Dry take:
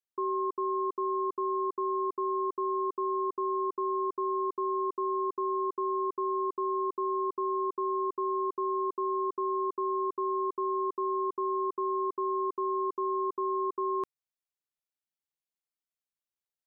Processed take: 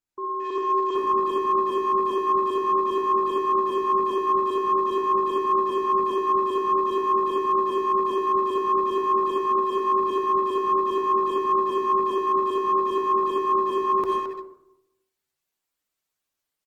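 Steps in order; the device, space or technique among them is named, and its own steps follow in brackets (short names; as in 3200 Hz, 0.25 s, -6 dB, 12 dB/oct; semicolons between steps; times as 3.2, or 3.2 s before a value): 9.31–9.81 notches 50/100/150/200/250/300/350/400/450 Hz; shoebox room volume 110 m³, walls mixed, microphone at 0.31 m; speakerphone in a meeting room (reverb RT60 0.75 s, pre-delay 45 ms, DRR 2 dB; speakerphone echo 0.22 s, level -7 dB; AGC gain up to 11 dB; gain -2.5 dB; Opus 16 kbps 48000 Hz)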